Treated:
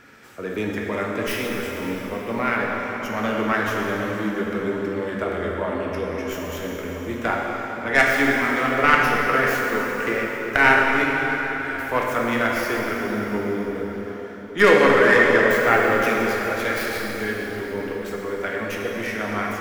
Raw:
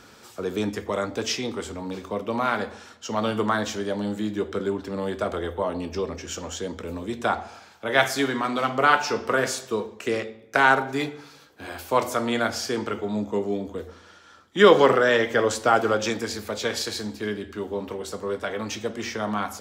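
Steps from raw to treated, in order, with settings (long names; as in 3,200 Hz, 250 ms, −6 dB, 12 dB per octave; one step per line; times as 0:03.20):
stylus tracing distortion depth 0.16 ms
octave-band graphic EQ 1,000/2,000/4,000/8,000 Hz −3/+10/−7/−5 dB
dense smooth reverb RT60 4.6 s, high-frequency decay 0.75×, DRR −2 dB
level −2 dB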